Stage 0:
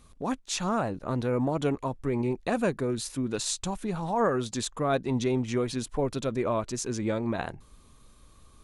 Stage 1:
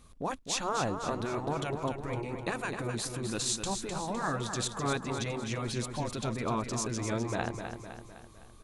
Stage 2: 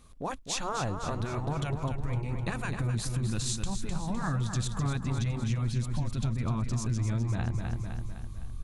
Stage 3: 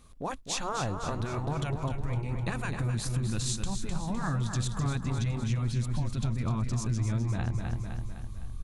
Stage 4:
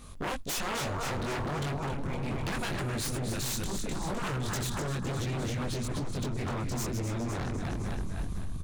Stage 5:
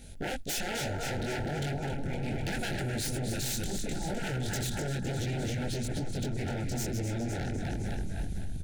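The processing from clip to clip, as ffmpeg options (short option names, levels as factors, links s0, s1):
-af "afftfilt=real='re*lt(hypot(re,im),0.251)':imag='im*lt(hypot(re,im),0.251)':win_size=1024:overlap=0.75,aeval=exprs='0.224*(cos(1*acos(clip(val(0)/0.224,-1,1)))-cos(1*PI/2))+0.00708*(cos(3*acos(clip(val(0)/0.224,-1,1)))-cos(3*PI/2))':c=same,aecho=1:1:255|510|765|1020|1275|1530:0.422|0.215|0.11|0.0559|0.0285|0.0145"
-af "asubboost=boost=10:cutoff=140,acompressor=threshold=0.0501:ratio=6"
-af "aecho=1:1:279:0.168"
-filter_complex "[0:a]asplit=2[s0][s1];[s1]adelay=21,volume=0.794[s2];[s0][s2]amix=inputs=2:normalize=0,acompressor=threshold=0.0251:ratio=6,aeval=exprs='0.0178*(abs(mod(val(0)/0.0178+3,4)-2)-1)':c=same,volume=2.37"
-af "asuperstop=centerf=1100:order=12:qfactor=2.3"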